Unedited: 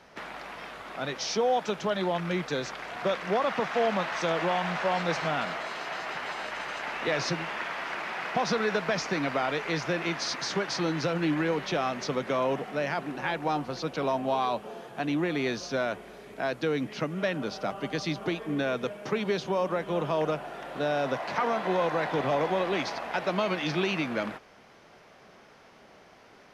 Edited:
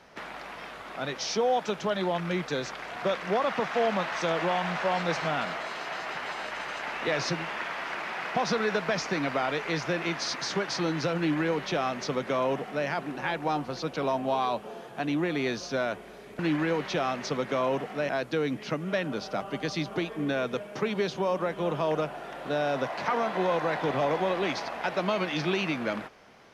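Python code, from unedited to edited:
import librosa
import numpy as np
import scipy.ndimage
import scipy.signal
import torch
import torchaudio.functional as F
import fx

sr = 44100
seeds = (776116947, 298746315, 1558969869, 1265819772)

y = fx.edit(x, sr, fx.duplicate(start_s=11.17, length_s=1.7, to_s=16.39), tone=tone)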